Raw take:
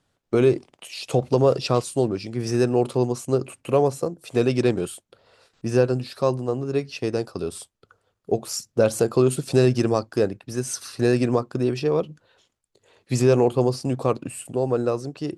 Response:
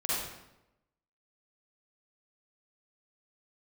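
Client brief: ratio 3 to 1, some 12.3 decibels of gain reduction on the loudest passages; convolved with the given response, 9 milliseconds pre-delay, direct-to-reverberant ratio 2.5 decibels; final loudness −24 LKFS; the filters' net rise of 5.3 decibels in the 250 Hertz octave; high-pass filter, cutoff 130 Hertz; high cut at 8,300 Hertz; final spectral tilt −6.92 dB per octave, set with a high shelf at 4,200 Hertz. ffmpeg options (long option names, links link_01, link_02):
-filter_complex "[0:a]highpass=130,lowpass=8300,equalizer=frequency=250:width_type=o:gain=7,highshelf=frequency=4200:gain=-7.5,acompressor=threshold=-28dB:ratio=3,asplit=2[link_01][link_02];[1:a]atrim=start_sample=2205,adelay=9[link_03];[link_02][link_03]afir=irnorm=-1:irlink=0,volume=-10dB[link_04];[link_01][link_04]amix=inputs=2:normalize=0,volume=5.5dB"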